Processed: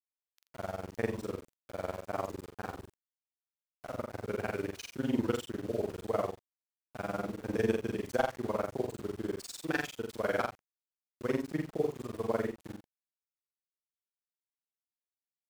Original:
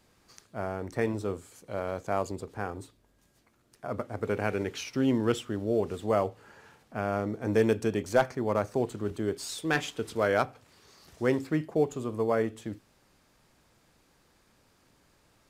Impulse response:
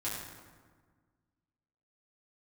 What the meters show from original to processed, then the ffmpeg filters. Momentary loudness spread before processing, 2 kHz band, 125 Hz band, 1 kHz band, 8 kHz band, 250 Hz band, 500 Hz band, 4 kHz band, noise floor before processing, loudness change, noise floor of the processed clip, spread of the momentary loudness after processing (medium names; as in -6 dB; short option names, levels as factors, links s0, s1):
11 LU, -5.0 dB, -6.5 dB, -5.5 dB, -6.0 dB, -5.5 dB, -6.0 dB, -6.0 dB, -66 dBFS, -5.5 dB, under -85 dBFS, 11 LU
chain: -af "tremolo=f=20:d=0.98,aeval=exprs='val(0)*gte(abs(val(0)),0.00794)':c=same,aecho=1:1:43.73|84.55:0.794|0.355,volume=0.631"